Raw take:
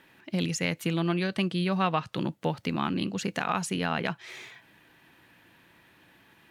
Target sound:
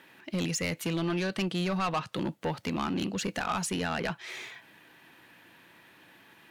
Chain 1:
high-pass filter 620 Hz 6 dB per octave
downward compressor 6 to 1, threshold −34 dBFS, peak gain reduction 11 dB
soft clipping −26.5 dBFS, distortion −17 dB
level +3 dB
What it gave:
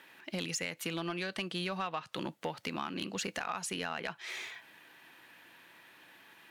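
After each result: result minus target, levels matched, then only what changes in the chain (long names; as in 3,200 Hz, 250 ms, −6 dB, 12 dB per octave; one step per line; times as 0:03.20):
downward compressor: peak gain reduction +11 dB; 250 Hz band −3.5 dB
remove: downward compressor 6 to 1, threshold −34 dBFS, peak gain reduction 11 dB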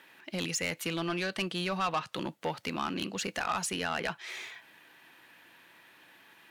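250 Hz band −3.5 dB
change: high-pass filter 200 Hz 6 dB per octave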